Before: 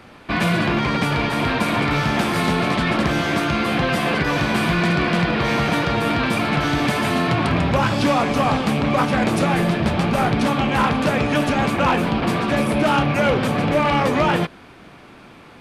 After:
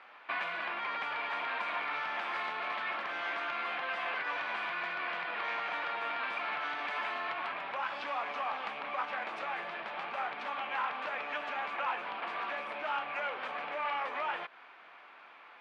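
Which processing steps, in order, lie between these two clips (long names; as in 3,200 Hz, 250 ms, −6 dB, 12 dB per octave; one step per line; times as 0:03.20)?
downward compressor, threshold −22 dBFS, peak gain reduction 8 dB
flat-topped band-pass 1,500 Hz, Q 0.7
level −6 dB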